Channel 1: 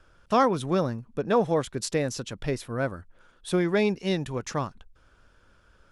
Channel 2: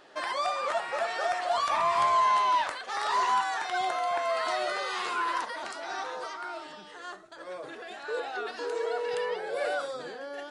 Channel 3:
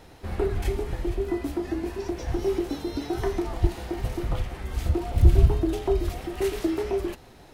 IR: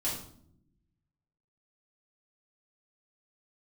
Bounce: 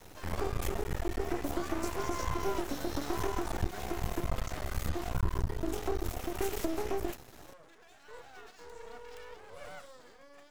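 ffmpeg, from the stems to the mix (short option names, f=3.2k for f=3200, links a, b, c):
-filter_complex "[0:a]acompressor=threshold=-25dB:ratio=6,volume=-14dB[a];[1:a]volume=-12.5dB[b];[2:a]acompressor=threshold=-26dB:ratio=5,volume=0.5dB[c];[a][b][c]amix=inputs=3:normalize=0,aeval=exprs='max(val(0),0)':c=same,aexciter=amount=1.3:drive=8.4:freq=5.9k"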